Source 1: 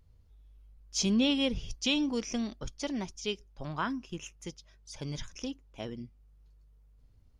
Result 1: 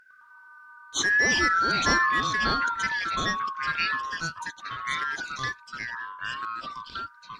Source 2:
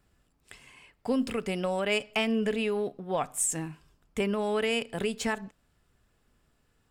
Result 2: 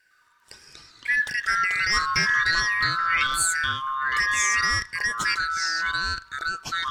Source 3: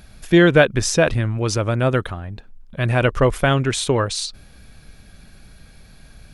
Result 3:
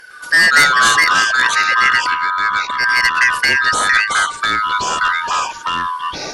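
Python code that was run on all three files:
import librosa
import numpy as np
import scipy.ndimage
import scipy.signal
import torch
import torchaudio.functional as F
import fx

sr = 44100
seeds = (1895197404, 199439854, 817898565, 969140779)

y = fx.band_shuffle(x, sr, order='3142')
y = fx.fold_sine(y, sr, drive_db=7, ceiling_db=0.0)
y = fx.echo_pitch(y, sr, ms=106, semitones=-4, count=2, db_per_echo=-3.0)
y = y * librosa.db_to_amplitude(-7.0)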